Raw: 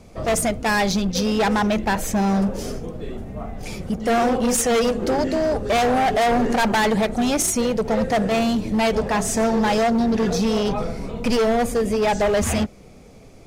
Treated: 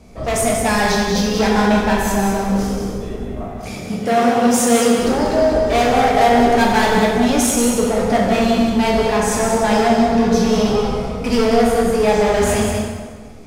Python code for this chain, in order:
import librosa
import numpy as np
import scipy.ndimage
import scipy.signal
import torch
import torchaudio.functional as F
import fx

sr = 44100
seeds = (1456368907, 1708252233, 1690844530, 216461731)

y = fx.highpass(x, sr, hz=100.0, slope=24, at=(3.4, 4.99))
y = y + 10.0 ** (-6.0 / 20.0) * np.pad(y, (int(187 * sr / 1000.0), 0))[:len(y)]
y = fx.rev_plate(y, sr, seeds[0], rt60_s=1.5, hf_ratio=0.75, predelay_ms=0, drr_db=-2.5)
y = F.gain(torch.from_numpy(y), -1.0).numpy()